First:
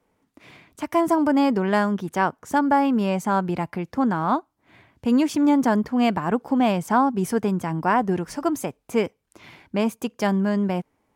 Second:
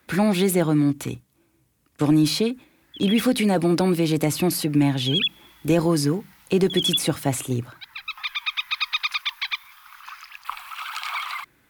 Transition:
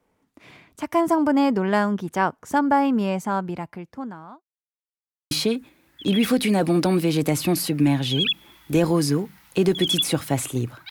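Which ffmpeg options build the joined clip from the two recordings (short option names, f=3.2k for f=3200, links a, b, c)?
-filter_complex "[0:a]apad=whole_dur=10.9,atrim=end=10.9,asplit=2[a][b];[a]atrim=end=4.44,asetpts=PTS-STARTPTS,afade=t=out:st=2.92:d=1.52[c];[b]atrim=start=4.44:end=5.31,asetpts=PTS-STARTPTS,volume=0[d];[1:a]atrim=start=2.26:end=7.85,asetpts=PTS-STARTPTS,afade=t=in:d=0.004:c=hsin[e];[c][d][e]concat=n=3:v=0:a=1"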